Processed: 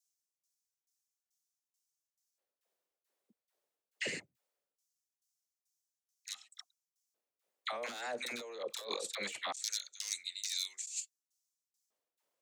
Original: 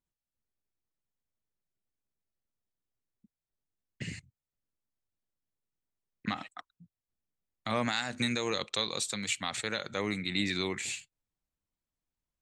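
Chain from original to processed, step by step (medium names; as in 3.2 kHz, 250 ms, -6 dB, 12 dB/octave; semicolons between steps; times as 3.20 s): tremolo saw down 2.3 Hz, depth 95%; wavefolder -26.5 dBFS; phase dispersion lows, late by 65 ms, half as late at 820 Hz; LFO high-pass square 0.21 Hz 510–6000 Hz; compressor with a negative ratio -45 dBFS, ratio -1; trim +4.5 dB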